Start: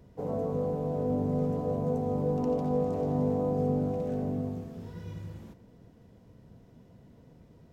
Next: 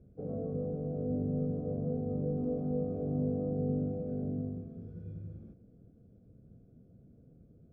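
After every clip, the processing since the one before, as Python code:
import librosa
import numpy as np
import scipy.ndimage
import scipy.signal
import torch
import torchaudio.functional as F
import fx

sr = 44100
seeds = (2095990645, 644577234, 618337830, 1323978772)

y = scipy.signal.lfilter(np.full(46, 1.0 / 46), 1.0, x)
y = y * librosa.db_to_amplitude(-2.5)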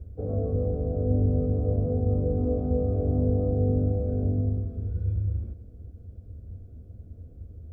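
y = fx.low_shelf_res(x, sr, hz=110.0, db=10.5, q=3.0)
y = y * librosa.db_to_amplitude(7.5)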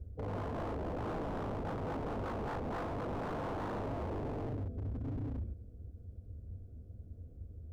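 y = 10.0 ** (-27.5 / 20.0) * (np.abs((x / 10.0 ** (-27.5 / 20.0) + 3.0) % 4.0 - 2.0) - 1.0)
y = y * librosa.db_to_amplitude(-5.5)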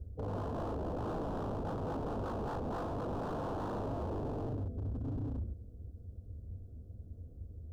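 y = fx.peak_eq(x, sr, hz=2100.0, db=-14.0, octaves=0.58)
y = y * librosa.db_to_amplitude(1.0)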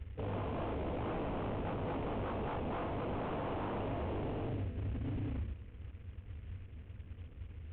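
y = fx.cvsd(x, sr, bps=16000)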